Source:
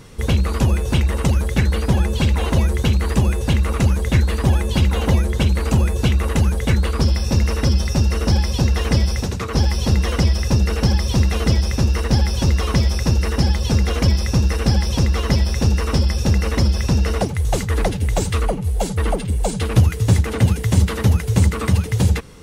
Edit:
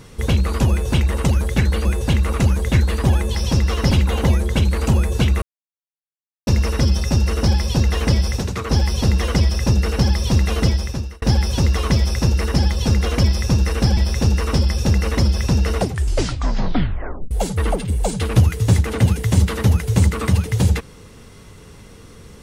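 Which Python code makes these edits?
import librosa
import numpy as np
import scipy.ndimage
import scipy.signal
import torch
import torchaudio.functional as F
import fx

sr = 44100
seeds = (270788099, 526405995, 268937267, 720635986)

y = fx.edit(x, sr, fx.cut(start_s=1.85, length_s=1.4),
    fx.silence(start_s=6.26, length_s=1.05),
    fx.fade_out_span(start_s=11.49, length_s=0.57),
    fx.move(start_s=14.81, length_s=0.56, to_s=4.75),
    fx.tape_stop(start_s=17.19, length_s=1.52), tone=tone)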